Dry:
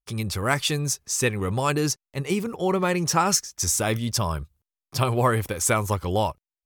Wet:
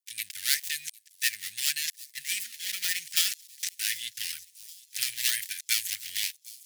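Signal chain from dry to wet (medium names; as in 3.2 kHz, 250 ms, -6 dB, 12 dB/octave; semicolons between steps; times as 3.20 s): dead-time distortion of 0.16 ms; elliptic high-pass 1.8 kHz, stop band 40 dB; treble shelf 4.3 kHz +11 dB; on a send: feedback echo behind a high-pass 757 ms, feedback 62%, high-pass 4.9 kHz, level -17.5 dB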